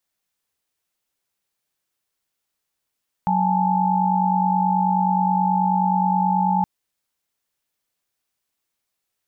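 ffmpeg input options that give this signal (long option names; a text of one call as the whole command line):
ffmpeg -f lavfi -i "aevalsrc='0.0891*(sin(2*PI*185*t)+sin(2*PI*830.61*t)+sin(2*PI*880*t))':duration=3.37:sample_rate=44100" out.wav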